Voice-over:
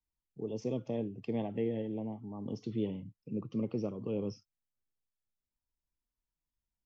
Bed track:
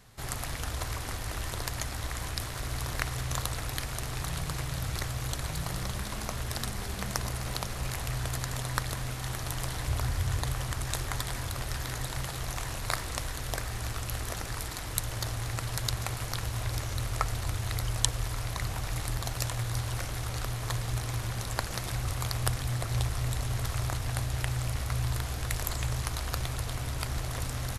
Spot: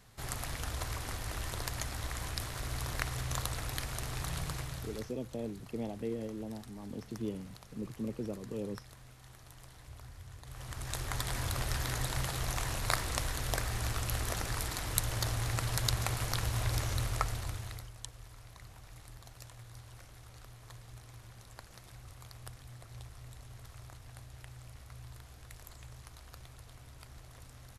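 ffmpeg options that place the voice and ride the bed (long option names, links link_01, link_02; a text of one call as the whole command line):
ffmpeg -i stem1.wav -i stem2.wav -filter_complex "[0:a]adelay=4450,volume=-3.5dB[link_01];[1:a]volume=16.5dB,afade=type=out:start_time=4.44:duration=0.71:silence=0.149624,afade=type=in:start_time=10.44:duration=1.05:silence=0.1,afade=type=out:start_time=16.89:duration=1.02:silence=0.112202[link_02];[link_01][link_02]amix=inputs=2:normalize=0" out.wav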